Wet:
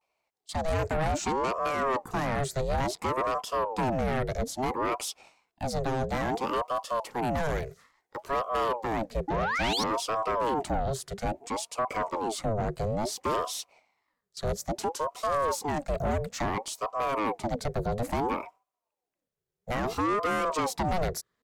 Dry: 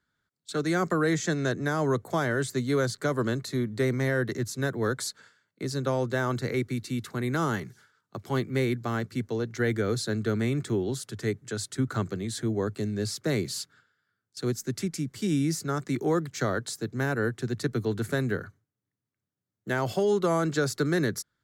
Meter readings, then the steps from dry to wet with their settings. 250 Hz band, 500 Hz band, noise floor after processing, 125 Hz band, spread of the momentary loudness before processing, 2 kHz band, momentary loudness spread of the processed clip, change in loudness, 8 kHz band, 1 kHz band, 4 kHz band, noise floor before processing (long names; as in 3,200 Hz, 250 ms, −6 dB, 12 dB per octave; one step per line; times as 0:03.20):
−6.0 dB, −1.5 dB, below −85 dBFS, −5.5 dB, 7 LU, −3.0 dB, 6 LU, −1.5 dB, −1.5 dB, +7.0 dB, +0.5 dB, below −85 dBFS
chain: dynamic equaliser 280 Hz, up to +6 dB, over −39 dBFS, Q 0.72
sound drawn into the spectrogram rise, 0:09.28–0:09.83, 550–5,300 Hz −26 dBFS
pitch vibrato 0.4 Hz 48 cents
soft clipping −24 dBFS, distortion −9 dB
ring modulator whose carrier an LFO sweeps 570 Hz, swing 55%, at 0.59 Hz
level +2.5 dB